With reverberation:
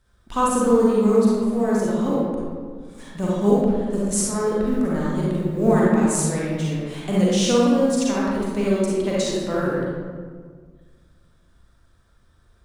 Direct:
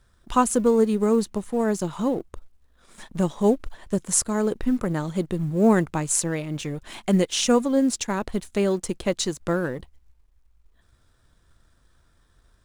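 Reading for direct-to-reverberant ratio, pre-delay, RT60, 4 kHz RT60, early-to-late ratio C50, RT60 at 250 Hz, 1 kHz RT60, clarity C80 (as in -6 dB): -6.5 dB, 34 ms, 1.8 s, 0.90 s, -4.5 dB, 2.1 s, 1.7 s, -0.5 dB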